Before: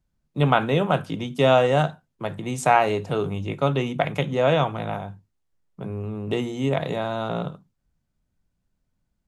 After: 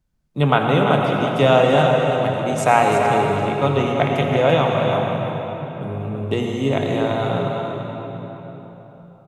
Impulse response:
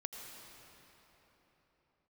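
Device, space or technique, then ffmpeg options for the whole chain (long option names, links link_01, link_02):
cave: -filter_complex "[0:a]aecho=1:1:338:0.398[link_01];[1:a]atrim=start_sample=2205[link_02];[link_01][link_02]afir=irnorm=-1:irlink=0,volume=6dB"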